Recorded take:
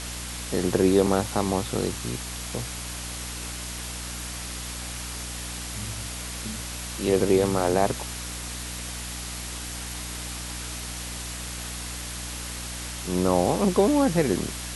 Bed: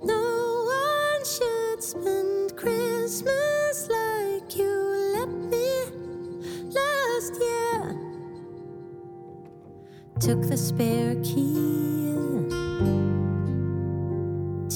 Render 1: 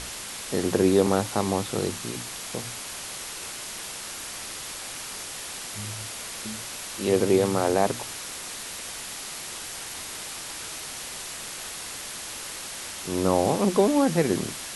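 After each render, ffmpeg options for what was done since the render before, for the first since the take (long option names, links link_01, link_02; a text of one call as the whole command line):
ffmpeg -i in.wav -af "bandreject=frequency=60:width_type=h:width=6,bandreject=frequency=120:width_type=h:width=6,bandreject=frequency=180:width_type=h:width=6,bandreject=frequency=240:width_type=h:width=6,bandreject=frequency=300:width_type=h:width=6" out.wav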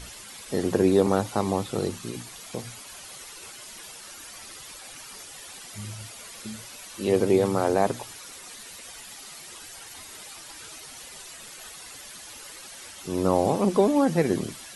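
ffmpeg -i in.wav -af "afftdn=noise_reduction=11:noise_floor=-37" out.wav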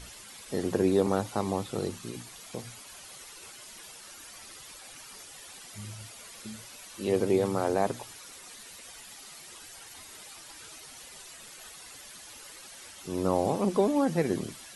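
ffmpeg -i in.wav -af "volume=-4.5dB" out.wav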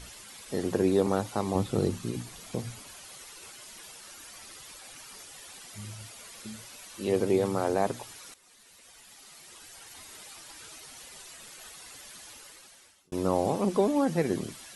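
ffmpeg -i in.wav -filter_complex "[0:a]asettb=1/sr,asplit=3[link_01][link_02][link_03];[link_01]atrim=end=1.554[link_04];[link_02]atrim=start=1.55:end=2.92,asetpts=PTS-STARTPTS,afade=type=in:duration=0.004:curve=qsin,afade=type=out:start_time=1.366:duration=0.004:curve=qsin,lowshelf=frequency=390:gain=9[link_05];[link_03]atrim=start=2.916[link_06];[link_04][link_05]acrossfade=duration=0.004:curve1=hsin:curve2=qsin[link_07];[link_07][link_06]acrossfade=duration=0.004:curve1=qsin:curve2=hsin,asplit=3[link_08][link_09][link_10];[link_08]atrim=end=8.34,asetpts=PTS-STARTPTS,afade=type=out:start_time=8.336:duration=0.004:curve=hsin:silence=0.188365[link_11];[link_09]atrim=start=8.34:end=13.12,asetpts=PTS-STARTPTS,afade=type=in:duration=1.74:silence=0.188365,afade=type=out:start_time=3.92:duration=0.86[link_12];[link_10]atrim=start=13.12,asetpts=PTS-STARTPTS,afade=type=in:duration=0.004:curve=hsin[link_13];[link_11][link_12][link_13]concat=n=3:v=0:a=1" out.wav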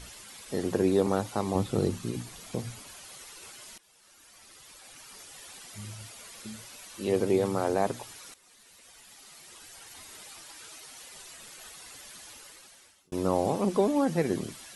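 ffmpeg -i in.wav -filter_complex "[0:a]asettb=1/sr,asplit=3[link_01][link_02][link_03];[link_01]atrim=end=10.454[link_04];[link_02]atrim=start=10.45:end=11.15,asetpts=PTS-STARTPTS,afade=type=in:duration=0.004:curve=qsin,afade=type=out:start_time=0.696:duration=0.004:curve=qsin,lowshelf=frequency=200:gain=-7.5[link_05];[link_03]atrim=start=11.146[link_06];[link_04][link_05]acrossfade=duration=0.004:curve1=hsin:curve2=qsin[link_07];[link_07][link_06]acrossfade=duration=0.004:curve1=qsin:curve2=hsin,asplit=2[link_08][link_09];[link_08]atrim=end=3.78,asetpts=PTS-STARTPTS,afade=type=out:start_time=3.776:duration=0.004:curve=hsin:silence=0.112202[link_10];[link_09]atrim=start=3.78,asetpts=PTS-STARTPTS,afade=type=in:duration=1.65:silence=0.112202[link_11];[link_10][link_11]concat=n=2:v=0:a=1" out.wav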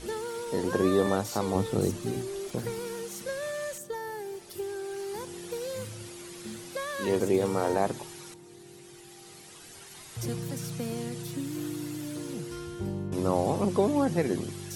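ffmpeg -i in.wav -i bed.wav -filter_complex "[1:a]volume=-10.5dB[link_01];[0:a][link_01]amix=inputs=2:normalize=0" out.wav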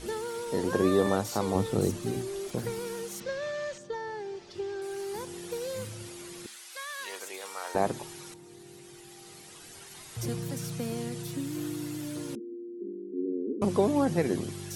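ffmpeg -i in.wav -filter_complex "[0:a]asettb=1/sr,asplit=3[link_01][link_02][link_03];[link_01]atrim=end=3.204[link_04];[link_02]atrim=start=3.2:end=4.82,asetpts=PTS-STARTPTS,afade=type=in:duration=0.004:curve=qsin,afade=type=out:start_time=1.616:duration=0.004:curve=qsin,lowpass=frequency=5900:width=0.5412,lowpass=frequency=5900:width=1.3066[link_05];[link_03]atrim=start=4.816[link_06];[link_04][link_05]acrossfade=duration=0.004:curve1=hsin:curve2=qsin[link_07];[link_07][link_06]acrossfade=duration=0.004:curve1=qsin:curve2=hsin,asettb=1/sr,asplit=3[link_08][link_09][link_10];[link_08]atrim=end=6.464[link_11];[link_09]atrim=start=6.46:end=7.75,asetpts=PTS-STARTPTS,afade=type=in:duration=0.004:curve=qsin,afade=type=out:start_time=1.286:duration=0.004:curve=qsin,highpass=1300[link_12];[link_10]atrim=start=7.746[link_13];[link_11][link_12]acrossfade=duration=0.004:curve1=hsin:curve2=qsin[link_14];[link_14][link_13]acrossfade=duration=0.004:curve1=qsin:curve2=hsin,asettb=1/sr,asplit=3[link_15][link_16][link_17];[link_15]atrim=end=12.354[link_18];[link_16]atrim=start=12.35:end=13.62,asetpts=PTS-STARTPTS,afade=type=in:duration=0.004:curve=qsin,afade=type=out:start_time=1.266:duration=0.004:curve=qsin,asuperpass=centerf=310:order=12:qfactor=1.4[link_19];[link_17]atrim=start=13.616[link_20];[link_18][link_19]acrossfade=duration=0.004:curve1=hsin:curve2=qsin[link_21];[link_21][link_20]acrossfade=duration=0.004:curve1=qsin:curve2=hsin" out.wav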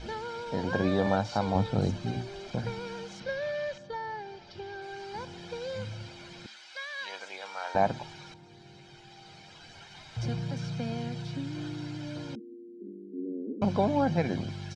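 ffmpeg -i in.wav -af "lowpass=frequency=4900:width=0.5412,lowpass=frequency=4900:width=1.3066,aecho=1:1:1.3:0.6" out.wav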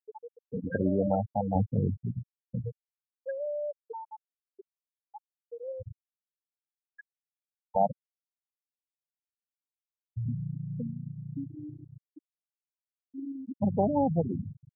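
ffmpeg -i in.wav -af "aemphasis=mode=reproduction:type=75fm,afftfilt=real='re*gte(hypot(re,im),0.158)':imag='im*gte(hypot(re,im),0.158)':win_size=1024:overlap=0.75" out.wav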